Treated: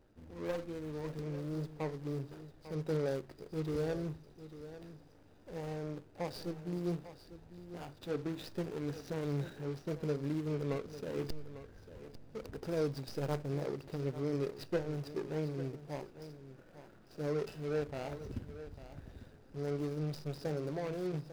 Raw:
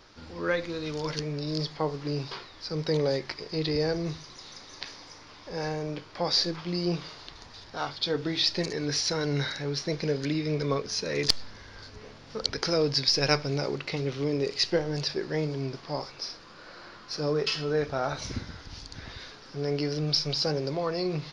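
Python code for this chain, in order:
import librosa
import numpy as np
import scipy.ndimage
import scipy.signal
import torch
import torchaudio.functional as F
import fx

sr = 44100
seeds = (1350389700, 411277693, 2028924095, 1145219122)

y = scipy.signal.medfilt(x, 41)
y = y + 10.0 ** (-13.5 / 20.0) * np.pad(y, (int(848 * sr / 1000.0), 0))[:len(y)]
y = F.gain(torch.from_numpy(y), -6.5).numpy()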